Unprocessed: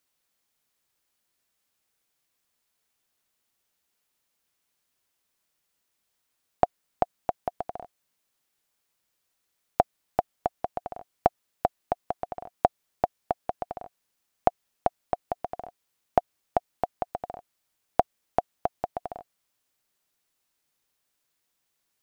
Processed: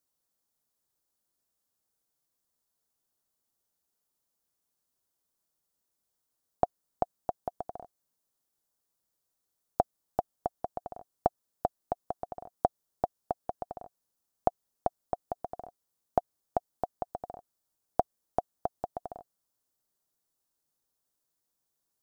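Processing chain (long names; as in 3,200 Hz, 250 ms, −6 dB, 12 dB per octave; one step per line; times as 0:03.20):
parametric band 2,400 Hz −13 dB 1.3 octaves
level −3.5 dB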